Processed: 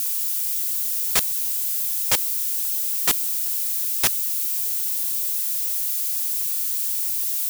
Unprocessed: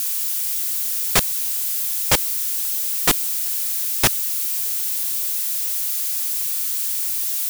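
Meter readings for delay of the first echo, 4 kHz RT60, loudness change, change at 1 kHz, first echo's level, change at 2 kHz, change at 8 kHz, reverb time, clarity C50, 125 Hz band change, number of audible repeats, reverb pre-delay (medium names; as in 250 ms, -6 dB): no echo, no reverb, -1.5 dB, -7.0 dB, no echo, -5.5 dB, -2.5 dB, no reverb, no reverb, -11.5 dB, no echo, no reverb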